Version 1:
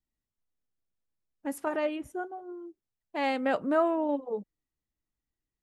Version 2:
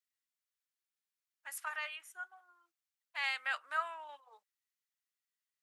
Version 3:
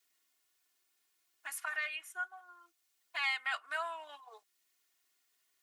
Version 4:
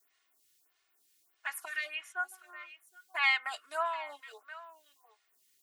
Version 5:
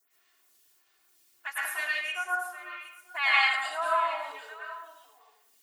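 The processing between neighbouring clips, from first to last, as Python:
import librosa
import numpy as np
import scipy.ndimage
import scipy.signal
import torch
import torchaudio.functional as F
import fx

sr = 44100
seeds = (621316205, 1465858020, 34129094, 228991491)

y1 = scipy.signal.sosfilt(scipy.signal.butter(4, 1300.0, 'highpass', fs=sr, output='sos'), x)
y1 = y1 * 10.0 ** (1.0 / 20.0)
y2 = y1 + 0.99 * np.pad(y1, (int(2.8 * sr / 1000.0), 0))[:len(y1)]
y2 = fx.band_squash(y2, sr, depth_pct=40)
y3 = y2 + 10.0 ** (-17.0 / 20.0) * np.pad(y2, (int(769 * sr / 1000.0), 0))[:len(y2)]
y3 = fx.stagger_phaser(y3, sr, hz=1.6)
y3 = y3 * 10.0 ** (7.5 / 20.0)
y4 = fx.rev_plate(y3, sr, seeds[0], rt60_s=0.73, hf_ratio=0.65, predelay_ms=95, drr_db=-6.5)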